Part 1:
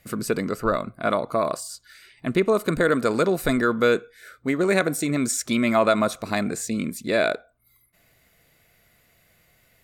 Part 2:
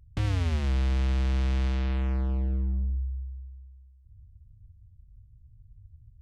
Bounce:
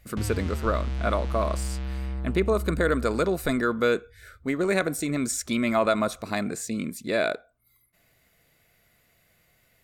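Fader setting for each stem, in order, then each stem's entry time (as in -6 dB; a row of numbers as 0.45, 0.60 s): -3.5, -4.0 dB; 0.00, 0.00 s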